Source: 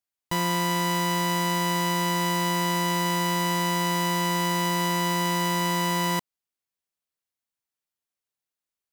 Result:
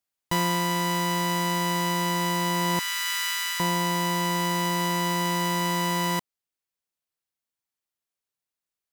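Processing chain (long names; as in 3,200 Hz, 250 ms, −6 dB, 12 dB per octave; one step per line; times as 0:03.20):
0:02.79–0:03.60: elliptic high-pass filter 1,300 Hz, stop band 80 dB
speech leveller within 4 dB 0.5 s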